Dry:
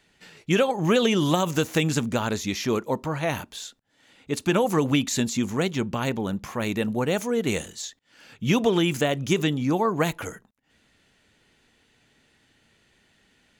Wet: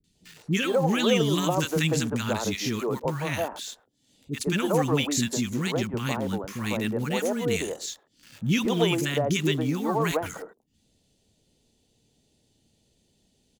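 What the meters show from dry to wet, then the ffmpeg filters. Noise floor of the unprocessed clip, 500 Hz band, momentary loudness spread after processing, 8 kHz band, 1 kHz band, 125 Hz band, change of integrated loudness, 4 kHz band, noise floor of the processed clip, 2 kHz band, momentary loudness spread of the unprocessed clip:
−65 dBFS, −2.0 dB, 11 LU, 0.0 dB, −2.0 dB, −0.5 dB, −1.5 dB, 0.0 dB, −69 dBFS, −1.0 dB, 11 LU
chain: -filter_complex "[0:a]acrossover=split=760|3500[link_01][link_02][link_03];[link_02]acrusher=bits=7:mix=0:aa=0.000001[link_04];[link_01][link_04][link_03]amix=inputs=3:normalize=0,acrossover=split=320|1200[link_05][link_06][link_07];[link_07]adelay=40[link_08];[link_06]adelay=150[link_09];[link_05][link_09][link_08]amix=inputs=3:normalize=0"

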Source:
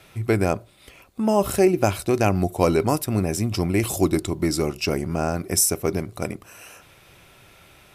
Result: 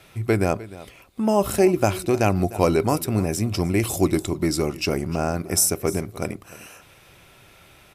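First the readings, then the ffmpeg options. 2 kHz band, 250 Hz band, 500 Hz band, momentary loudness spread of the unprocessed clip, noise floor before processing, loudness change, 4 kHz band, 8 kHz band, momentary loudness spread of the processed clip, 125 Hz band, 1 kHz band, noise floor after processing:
0.0 dB, 0.0 dB, 0.0 dB, 9 LU, −52 dBFS, 0.0 dB, 0.0 dB, 0.0 dB, 12 LU, 0.0 dB, 0.0 dB, −52 dBFS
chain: -af "aecho=1:1:303:0.126"

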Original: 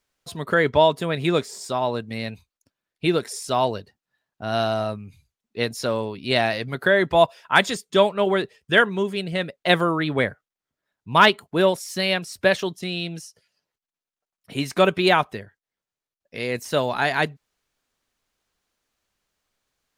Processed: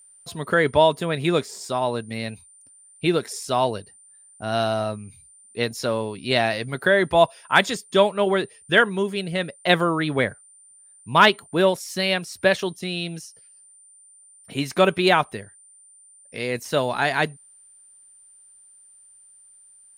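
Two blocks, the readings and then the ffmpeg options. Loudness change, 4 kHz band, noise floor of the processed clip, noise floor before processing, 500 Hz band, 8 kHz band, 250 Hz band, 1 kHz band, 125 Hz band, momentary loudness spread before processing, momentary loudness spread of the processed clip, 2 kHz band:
0.0 dB, 0.0 dB, −52 dBFS, below −85 dBFS, 0.0 dB, +1.5 dB, 0.0 dB, 0.0 dB, 0.0 dB, 13 LU, 13 LU, 0.0 dB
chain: -af "aeval=exprs='val(0)+0.00355*sin(2*PI*9100*n/s)':channel_layout=same"

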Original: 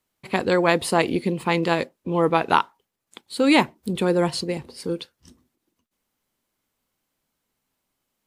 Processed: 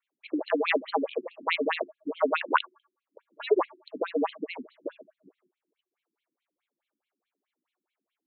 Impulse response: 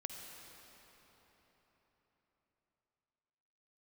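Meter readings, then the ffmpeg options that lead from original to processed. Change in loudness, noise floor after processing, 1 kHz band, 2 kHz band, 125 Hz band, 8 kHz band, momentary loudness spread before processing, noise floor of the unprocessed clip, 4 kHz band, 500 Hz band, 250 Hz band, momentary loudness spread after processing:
−7.0 dB, below −85 dBFS, −7.5 dB, −6.0 dB, below −35 dB, below −40 dB, 12 LU, −79 dBFS, −8.5 dB, −6.0 dB, −11.5 dB, 14 LU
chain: -af "bandreject=frequency=258.2:width_type=h:width=4,bandreject=frequency=516.4:width_type=h:width=4,bandreject=frequency=774.6:width_type=h:width=4,bandreject=frequency=1032.8:width_type=h:width=4,bandreject=frequency=1291:width_type=h:width=4,bandreject=frequency=1549.2:width_type=h:width=4,afreqshift=110,afftfilt=real='re*between(b*sr/1024,240*pow(3100/240,0.5+0.5*sin(2*PI*4.7*pts/sr))/1.41,240*pow(3100/240,0.5+0.5*sin(2*PI*4.7*pts/sr))*1.41)':imag='im*between(b*sr/1024,240*pow(3100/240,0.5+0.5*sin(2*PI*4.7*pts/sr))/1.41,240*pow(3100/240,0.5+0.5*sin(2*PI*4.7*pts/sr))*1.41)':win_size=1024:overlap=0.75"

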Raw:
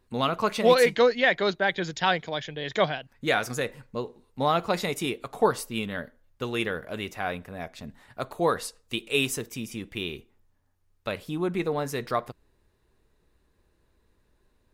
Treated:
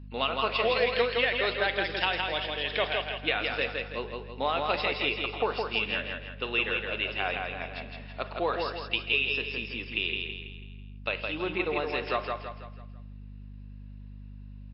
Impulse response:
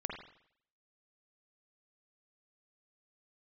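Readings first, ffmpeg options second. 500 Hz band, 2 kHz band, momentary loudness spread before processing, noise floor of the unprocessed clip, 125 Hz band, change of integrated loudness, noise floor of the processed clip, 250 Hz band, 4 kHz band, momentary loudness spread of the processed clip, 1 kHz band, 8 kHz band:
−4.5 dB, +1.0 dB, 16 LU, −68 dBFS, −5.0 dB, −2.0 dB, −44 dBFS, −7.0 dB, +2.0 dB, 21 LU, −3.0 dB, below −40 dB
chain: -filter_complex "[0:a]highpass=370,equalizer=frequency=2700:width=3.8:gain=12.5,acompressor=threshold=-22dB:ratio=8,aecho=1:1:164|328|492|656|820:0.631|0.271|0.117|0.0502|0.0216,aeval=exprs='val(0)+0.00891*(sin(2*PI*50*n/s)+sin(2*PI*2*50*n/s)/2+sin(2*PI*3*50*n/s)/3+sin(2*PI*4*50*n/s)/4+sin(2*PI*5*50*n/s)/5)':channel_layout=same,asplit=2[link_01][link_02];[1:a]atrim=start_sample=2205[link_03];[link_02][link_03]afir=irnorm=-1:irlink=0,volume=-10dB[link_04];[link_01][link_04]amix=inputs=2:normalize=0,volume=-3dB" -ar 12000 -c:a libmp3lame -b:a 32k

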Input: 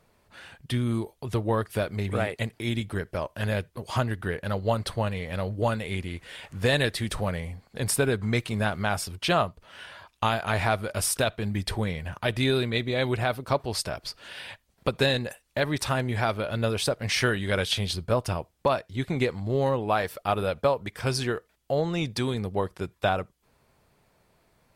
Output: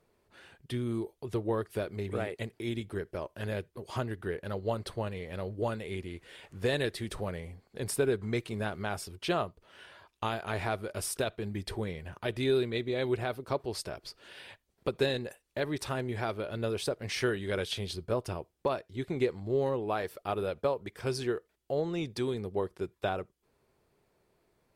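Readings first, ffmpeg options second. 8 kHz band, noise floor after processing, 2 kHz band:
−9.0 dB, −76 dBFS, −9.0 dB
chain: -af "equalizer=frequency=380:width=2.1:gain=9,volume=-9dB"

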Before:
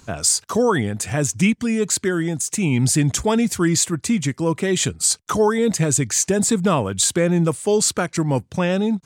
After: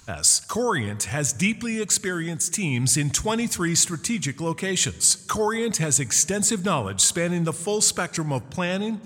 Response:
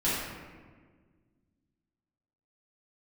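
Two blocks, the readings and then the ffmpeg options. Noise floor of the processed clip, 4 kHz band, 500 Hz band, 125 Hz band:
−43 dBFS, 0.0 dB, −7.0 dB, −5.5 dB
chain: -filter_complex "[0:a]equalizer=frequency=310:width=0.4:gain=-8,asplit=2[link_01][link_02];[1:a]atrim=start_sample=2205,asetrate=28224,aresample=44100[link_03];[link_02][link_03]afir=irnorm=-1:irlink=0,volume=-32.5dB[link_04];[link_01][link_04]amix=inputs=2:normalize=0"

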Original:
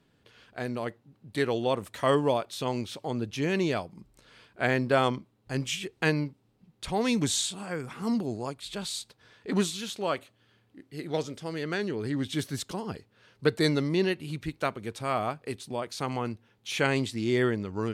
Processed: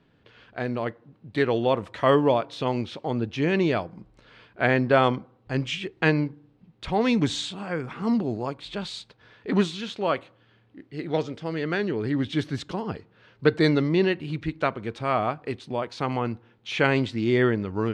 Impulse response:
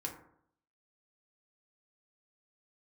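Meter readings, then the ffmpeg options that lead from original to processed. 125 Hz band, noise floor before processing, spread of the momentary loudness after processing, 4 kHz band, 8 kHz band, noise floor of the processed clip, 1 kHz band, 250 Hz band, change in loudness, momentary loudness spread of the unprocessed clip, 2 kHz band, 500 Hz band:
+4.5 dB, −68 dBFS, 12 LU, +1.0 dB, −9.0 dB, −61 dBFS, +4.5 dB, +4.5 dB, +4.0 dB, 11 LU, +4.0 dB, +4.5 dB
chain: -filter_complex "[0:a]lowpass=3400,asplit=2[link_01][link_02];[1:a]atrim=start_sample=2205[link_03];[link_02][link_03]afir=irnorm=-1:irlink=0,volume=-19.5dB[link_04];[link_01][link_04]amix=inputs=2:normalize=0,volume=4dB"

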